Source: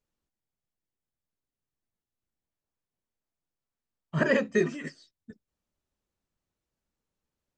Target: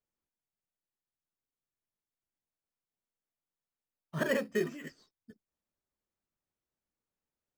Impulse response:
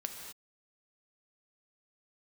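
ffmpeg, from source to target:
-filter_complex "[0:a]lowshelf=f=160:g=-6.5,asplit=2[a][b];[b]acrusher=samples=9:mix=1:aa=0.000001,volume=-5dB[c];[a][c]amix=inputs=2:normalize=0,volume=-9dB"

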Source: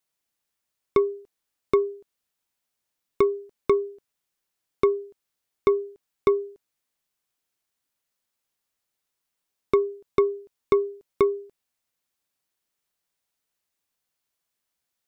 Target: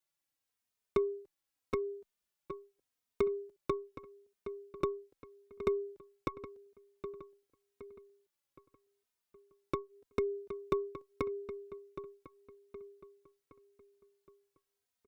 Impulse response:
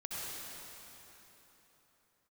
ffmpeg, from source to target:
-filter_complex "[0:a]acompressor=threshold=-23dB:ratio=6,asplit=2[a][b];[b]adelay=768,lowpass=f=3.9k:p=1,volume=-12dB,asplit=2[c][d];[d]adelay=768,lowpass=f=3.9k:p=1,volume=0.47,asplit=2[e][f];[f]adelay=768,lowpass=f=3.9k:p=1,volume=0.47,asplit=2[g][h];[h]adelay=768,lowpass=f=3.9k:p=1,volume=0.47,asplit=2[i][j];[j]adelay=768,lowpass=f=3.9k:p=1,volume=0.47[k];[a][c][e][g][i][k]amix=inputs=6:normalize=0,asplit=2[l][m];[m]adelay=3,afreqshift=-0.84[n];[l][n]amix=inputs=2:normalize=1,volume=-3dB"

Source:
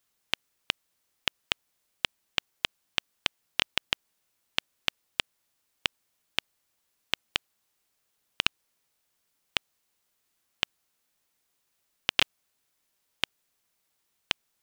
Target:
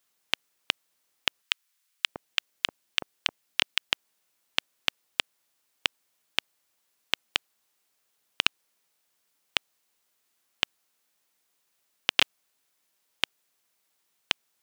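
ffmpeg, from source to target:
-filter_complex "[0:a]highpass=f=230:p=1,asettb=1/sr,asplit=3[a][b][c];[a]atrim=end=1.424[d];[b]atrim=start=1.42:end=3.89,asetpts=PTS-STARTPTS,afade=t=in:d=0.004:c=qsin,afade=t=out:st=2.466:d=0.004:c=qsin,acrossover=split=990[e][f];[e]adelay=640[g];[g][f]amix=inputs=2:normalize=0,atrim=end_sample=108927[h];[c]atrim=start=3.886[i];[d][h]acrossfade=d=0.004:c1=hsin:c2=qsin[j];[j][i]acrossfade=d=0.004:c1=qsin:c2=hsin,volume=2dB"

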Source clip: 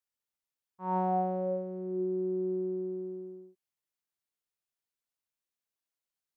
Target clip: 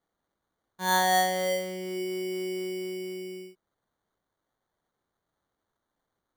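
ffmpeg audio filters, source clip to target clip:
-filter_complex "[0:a]acrossover=split=530[a][b];[a]acompressor=threshold=-46dB:ratio=6[c];[c][b]amix=inputs=2:normalize=0,acrusher=samples=17:mix=1:aa=0.000001,volume=8.5dB"

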